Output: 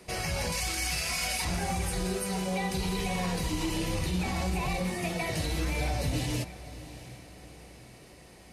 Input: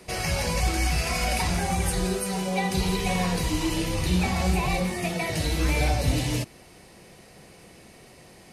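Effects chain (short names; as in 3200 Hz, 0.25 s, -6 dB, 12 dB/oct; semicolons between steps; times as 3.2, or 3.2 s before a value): 0.52–1.45 tilt shelf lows -6.5 dB, about 1300 Hz; limiter -18 dBFS, peak gain reduction 6.5 dB; diffused feedback echo 0.69 s, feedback 45%, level -15.5 dB; gain -3.5 dB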